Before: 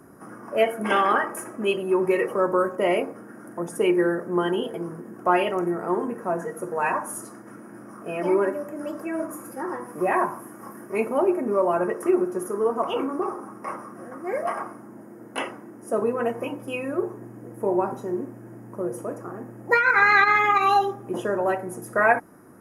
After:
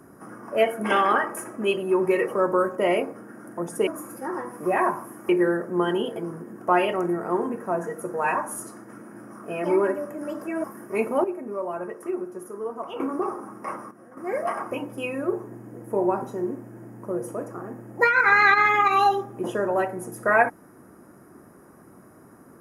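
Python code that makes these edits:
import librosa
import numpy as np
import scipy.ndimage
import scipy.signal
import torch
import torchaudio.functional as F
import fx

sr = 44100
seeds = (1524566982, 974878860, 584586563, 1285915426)

y = fx.edit(x, sr, fx.move(start_s=9.22, length_s=1.42, to_s=3.87),
    fx.clip_gain(start_s=11.24, length_s=1.76, db=-8.5),
    fx.clip_gain(start_s=13.91, length_s=0.26, db=-9.5),
    fx.cut(start_s=14.71, length_s=1.7), tone=tone)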